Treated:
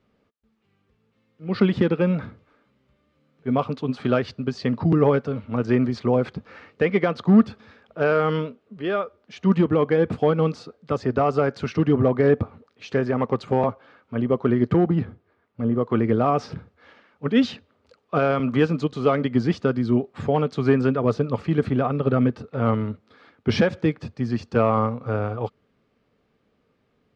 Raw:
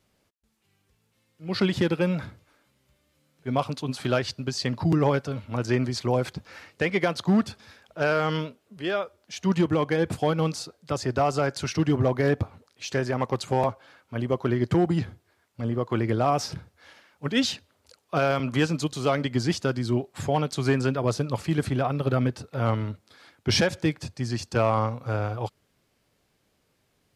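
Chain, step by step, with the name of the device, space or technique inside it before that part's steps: inside a cardboard box (low-pass 3 kHz 12 dB/octave; small resonant body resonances 230/440/1200 Hz, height 8 dB, ringing for 30 ms); 14.89–15.76 s: treble shelf 3.5 kHz -8.5 dB

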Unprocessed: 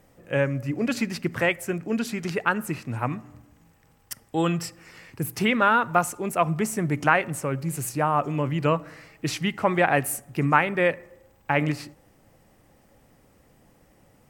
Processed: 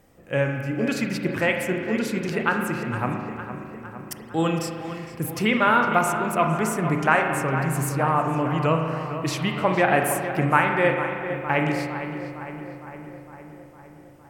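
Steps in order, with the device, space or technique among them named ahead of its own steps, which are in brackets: dub delay into a spring reverb (filtered feedback delay 458 ms, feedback 66%, low-pass 2.9 kHz, level -10 dB; spring tank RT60 1.8 s, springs 37 ms, chirp 45 ms, DRR 3.5 dB)

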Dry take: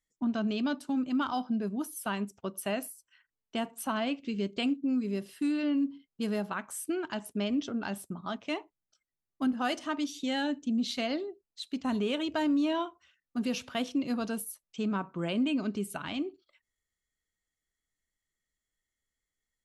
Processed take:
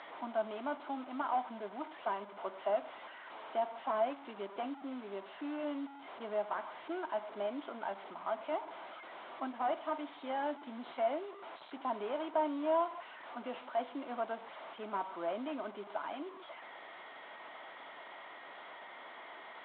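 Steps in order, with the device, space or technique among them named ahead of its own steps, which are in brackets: digital answering machine (band-pass 310–3300 Hz; one-bit delta coder 16 kbps, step -40 dBFS; cabinet simulation 400–4500 Hz, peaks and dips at 460 Hz -5 dB, 660 Hz +7 dB, 950 Hz +6 dB, 1.8 kHz -6 dB, 2.6 kHz -9 dB, 3.8 kHz +4 dB); trim -1.5 dB

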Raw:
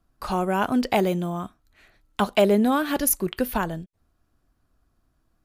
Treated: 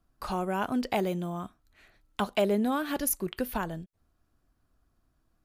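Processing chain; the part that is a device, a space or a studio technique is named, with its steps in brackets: parallel compression (in parallel at -1.5 dB: compression, threshold -32 dBFS, peak gain reduction 17 dB); on the sum: trim -8.5 dB

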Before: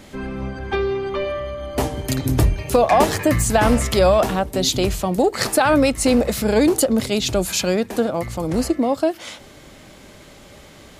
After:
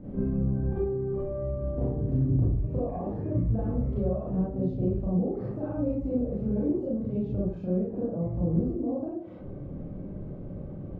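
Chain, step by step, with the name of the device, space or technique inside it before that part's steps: television next door (compression 5:1, threshold -32 dBFS, peak gain reduction 19 dB; low-pass 330 Hz 12 dB/octave; reverberation RT60 0.50 s, pre-delay 30 ms, DRR -7.5 dB)

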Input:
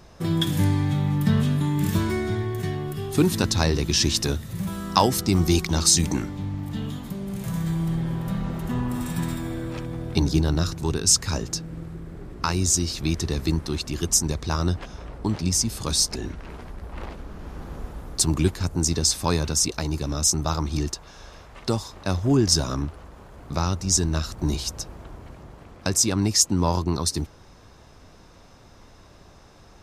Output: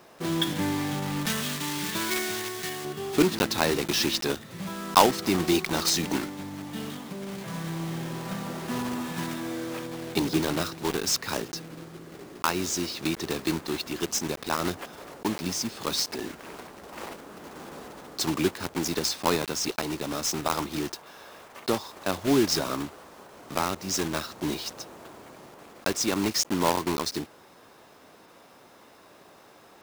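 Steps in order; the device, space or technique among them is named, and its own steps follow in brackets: early digital voice recorder (band-pass 280–3800 Hz; block-companded coder 3-bit); 1.26–2.85 s: tilt shelf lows -6.5 dB, about 1.3 kHz; trim +1 dB

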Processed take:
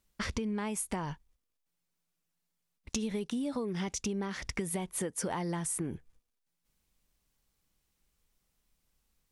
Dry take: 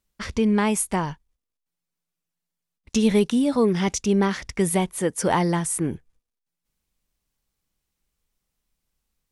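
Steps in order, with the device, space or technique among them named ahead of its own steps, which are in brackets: serial compression, peaks first (compression 5:1, threshold -28 dBFS, peak gain reduction 12.5 dB; compression 2.5:1, threshold -35 dBFS, peak gain reduction 7 dB); trim +1.5 dB

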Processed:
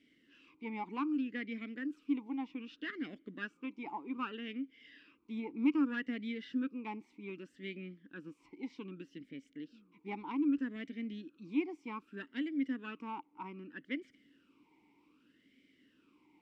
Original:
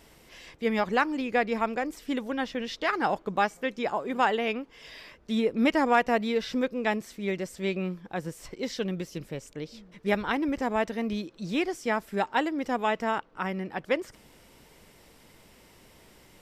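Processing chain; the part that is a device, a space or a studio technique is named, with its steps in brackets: talk box (valve stage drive 15 dB, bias 0.4; talking filter i-u 0.64 Hz); trim +1.5 dB

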